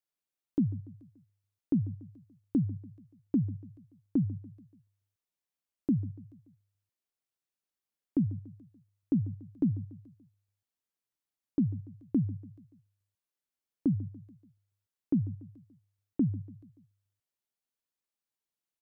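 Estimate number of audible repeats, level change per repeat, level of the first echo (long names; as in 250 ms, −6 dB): 3, −6.0 dB, −18.0 dB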